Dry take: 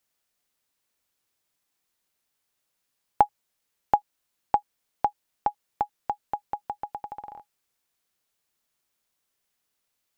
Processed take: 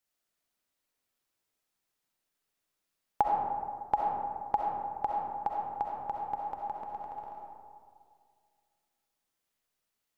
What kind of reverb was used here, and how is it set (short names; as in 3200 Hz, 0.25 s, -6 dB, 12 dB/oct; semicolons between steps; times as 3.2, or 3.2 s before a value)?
digital reverb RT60 2.1 s, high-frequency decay 0.35×, pre-delay 25 ms, DRR -2 dB; gain -7.5 dB